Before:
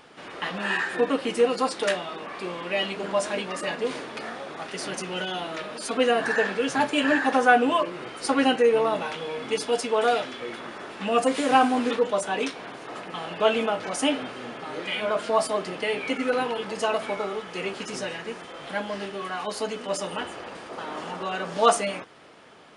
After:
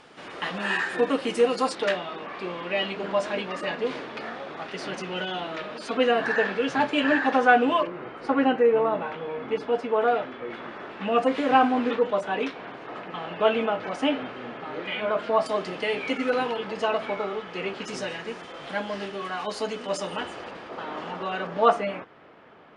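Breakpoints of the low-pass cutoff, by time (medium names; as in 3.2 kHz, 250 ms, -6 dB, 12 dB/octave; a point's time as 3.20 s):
9.7 kHz
from 1.75 s 4.1 kHz
from 7.87 s 1.8 kHz
from 10.50 s 2.9 kHz
from 15.46 s 6.2 kHz
from 16.56 s 3.8 kHz
from 17.84 s 6.9 kHz
from 20.51 s 3.8 kHz
from 21.47 s 2.2 kHz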